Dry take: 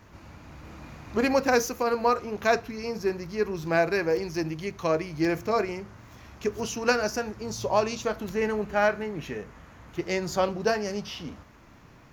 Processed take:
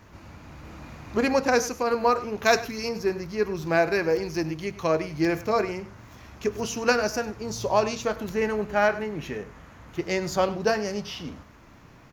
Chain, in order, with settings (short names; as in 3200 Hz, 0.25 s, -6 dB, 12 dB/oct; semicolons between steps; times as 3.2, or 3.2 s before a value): 1.2–1.91 Chebyshev low-pass 10000 Hz, order 2; 2.46–2.89 high shelf 3200 Hz +10.5 dB; outdoor echo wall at 17 m, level -16 dB; gain +1.5 dB